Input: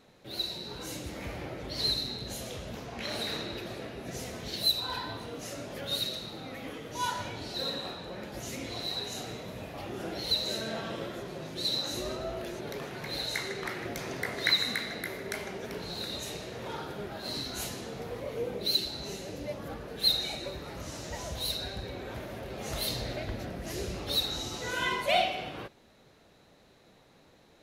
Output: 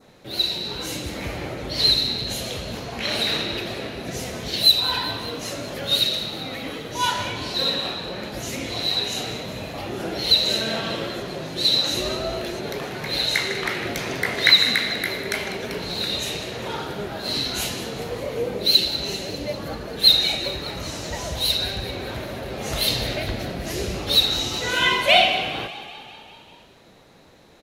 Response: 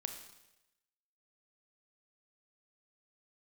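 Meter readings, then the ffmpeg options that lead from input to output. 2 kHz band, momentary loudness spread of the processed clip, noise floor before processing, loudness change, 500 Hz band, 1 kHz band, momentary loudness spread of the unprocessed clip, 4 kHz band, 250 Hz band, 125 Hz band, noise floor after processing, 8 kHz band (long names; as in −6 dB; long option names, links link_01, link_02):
+11.5 dB, 15 LU, −60 dBFS, +11.5 dB, +8.5 dB, +9.0 dB, 13 LU, +12.0 dB, +8.5 dB, +8.5 dB, −48 dBFS, +9.0 dB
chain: -filter_complex "[0:a]adynamicequalizer=threshold=0.00501:dfrequency=2900:dqfactor=1.3:tfrequency=2900:tqfactor=1.3:attack=5:release=100:ratio=0.375:range=3.5:mode=boostabove:tftype=bell,asplit=8[link_01][link_02][link_03][link_04][link_05][link_06][link_07][link_08];[link_02]adelay=197,afreqshift=31,volume=-15dB[link_09];[link_03]adelay=394,afreqshift=62,volume=-18.9dB[link_10];[link_04]adelay=591,afreqshift=93,volume=-22.8dB[link_11];[link_05]adelay=788,afreqshift=124,volume=-26.6dB[link_12];[link_06]adelay=985,afreqshift=155,volume=-30.5dB[link_13];[link_07]adelay=1182,afreqshift=186,volume=-34.4dB[link_14];[link_08]adelay=1379,afreqshift=217,volume=-38.3dB[link_15];[link_01][link_09][link_10][link_11][link_12][link_13][link_14][link_15]amix=inputs=8:normalize=0,acontrast=28,volume=3dB"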